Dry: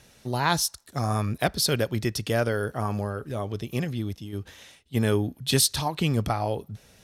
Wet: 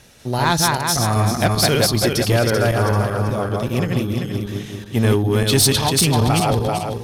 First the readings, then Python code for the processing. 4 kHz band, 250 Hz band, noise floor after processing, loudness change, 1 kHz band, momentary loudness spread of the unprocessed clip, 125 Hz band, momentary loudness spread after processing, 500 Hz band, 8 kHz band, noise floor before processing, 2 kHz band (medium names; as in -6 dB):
+8.5 dB, +9.0 dB, -34 dBFS, +8.5 dB, +9.0 dB, 10 LU, +9.5 dB, 9 LU, +9.0 dB, +8.5 dB, -57 dBFS, +8.5 dB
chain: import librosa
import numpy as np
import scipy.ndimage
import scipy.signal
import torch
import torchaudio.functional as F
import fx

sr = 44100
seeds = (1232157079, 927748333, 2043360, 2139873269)

p1 = fx.reverse_delay_fb(x, sr, ms=194, feedback_pct=58, wet_db=-1.5)
p2 = 10.0 ** (-19.5 / 20.0) * (np.abs((p1 / 10.0 ** (-19.5 / 20.0) + 3.0) % 4.0 - 2.0) - 1.0)
p3 = p1 + F.gain(torch.from_numpy(p2), -9.0).numpy()
y = F.gain(torch.from_numpy(p3), 4.0).numpy()